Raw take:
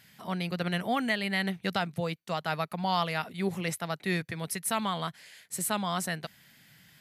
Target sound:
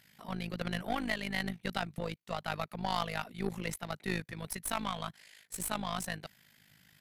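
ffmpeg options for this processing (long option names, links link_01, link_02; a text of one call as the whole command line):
ffmpeg -i in.wav -af "tremolo=f=52:d=0.788,aeval=exprs='0.178*(cos(1*acos(clip(val(0)/0.178,-1,1)))-cos(1*PI/2))+0.0126*(cos(8*acos(clip(val(0)/0.178,-1,1)))-cos(8*PI/2))':channel_layout=same,volume=-2dB" out.wav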